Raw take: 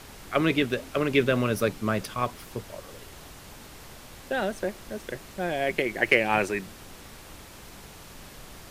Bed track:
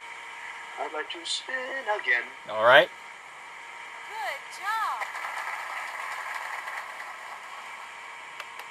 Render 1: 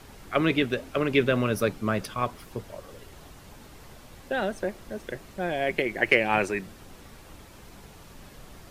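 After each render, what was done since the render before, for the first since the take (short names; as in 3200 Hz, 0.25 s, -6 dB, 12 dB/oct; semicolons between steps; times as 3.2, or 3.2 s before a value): denoiser 6 dB, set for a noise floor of -47 dBFS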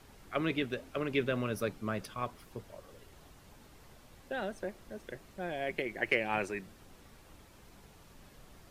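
gain -9 dB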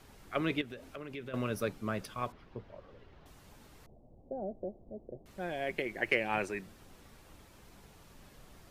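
0.61–1.34 compressor 3:1, threshold -43 dBFS; 2.32–3.26 air absorption 260 m; 3.86–5.26 elliptic low-pass 720 Hz, stop band 80 dB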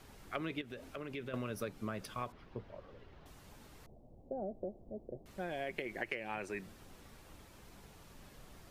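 compressor 16:1, threshold -35 dBFS, peak gain reduction 13 dB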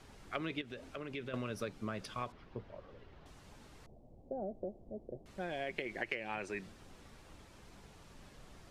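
LPF 8900 Hz 12 dB/oct; dynamic EQ 4100 Hz, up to +3 dB, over -54 dBFS, Q 0.79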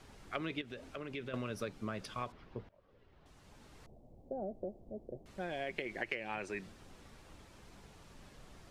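2.69–3.84 fade in, from -22.5 dB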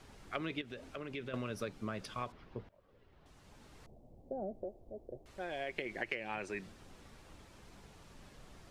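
4.63–5.76 bell 190 Hz -10 dB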